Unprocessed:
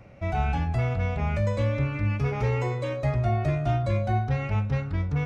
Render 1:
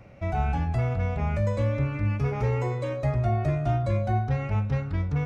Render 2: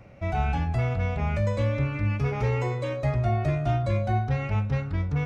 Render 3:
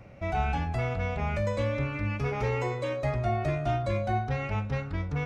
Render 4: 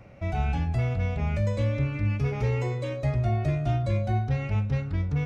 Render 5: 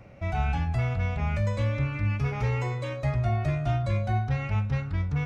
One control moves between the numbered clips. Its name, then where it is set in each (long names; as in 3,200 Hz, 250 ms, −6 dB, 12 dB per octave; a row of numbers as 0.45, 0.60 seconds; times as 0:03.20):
dynamic equaliser, frequency: 3,400, 9,600, 110, 1,100, 410 Hertz